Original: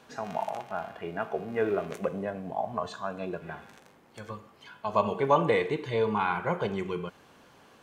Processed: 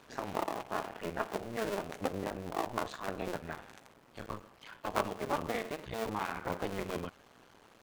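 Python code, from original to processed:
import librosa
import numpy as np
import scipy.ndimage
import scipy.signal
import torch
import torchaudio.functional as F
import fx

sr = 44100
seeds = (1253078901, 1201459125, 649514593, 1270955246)

y = fx.cycle_switch(x, sr, every=2, mode='muted')
y = fx.rider(y, sr, range_db=5, speed_s=0.5)
y = y * librosa.db_to_amplitude(-4.0)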